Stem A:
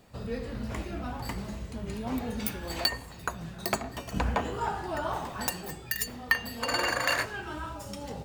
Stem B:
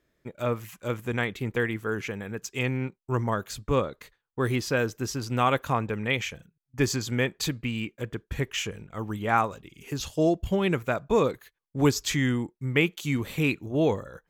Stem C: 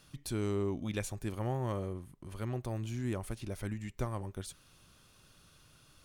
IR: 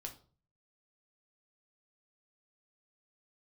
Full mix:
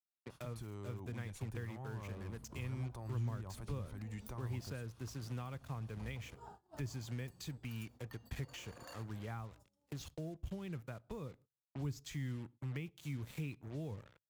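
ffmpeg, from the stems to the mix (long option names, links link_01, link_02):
-filter_complex "[0:a]equalizer=frequency=2200:width=1.4:gain=-15,adelay=1800,volume=-17.5dB,asplit=2[link_01][link_02];[link_02]volume=-18dB[link_03];[1:a]acontrast=56,acrusher=bits=4:mix=0:aa=0.5,volume=-14dB,asplit=2[link_04][link_05];[link_05]volume=-14dB[link_06];[2:a]equalizer=frequency=950:width_type=o:width=0.88:gain=9.5,alimiter=level_in=8dB:limit=-24dB:level=0:latency=1:release=133,volume=-8dB,adelay=300,volume=2dB[link_07];[3:a]atrim=start_sample=2205[link_08];[link_03][link_06]amix=inputs=2:normalize=0[link_09];[link_09][link_08]afir=irnorm=-1:irlink=0[link_10];[link_01][link_04][link_07][link_10]amix=inputs=4:normalize=0,highpass=frequency=65:poles=1,agate=range=-25dB:threshold=-50dB:ratio=16:detection=peak,acrossover=split=140[link_11][link_12];[link_12]acompressor=threshold=-48dB:ratio=6[link_13];[link_11][link_13]amix=inputs=2:normalize=0"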